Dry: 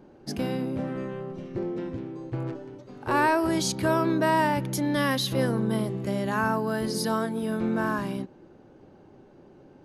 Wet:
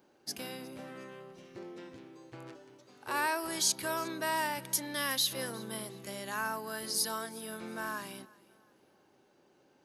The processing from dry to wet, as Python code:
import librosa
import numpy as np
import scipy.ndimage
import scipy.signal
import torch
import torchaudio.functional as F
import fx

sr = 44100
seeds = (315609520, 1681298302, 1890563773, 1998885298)

p1 = fx.tilt_eq(x, sr, slope=4.0)
p2 = p1 + fx.echo_feedback(p1, sr, ms=360, feedback_pct=37, wet_db=-22.5, dry=0)
y = p2 * librosa.db_to_amplitude(-9.0)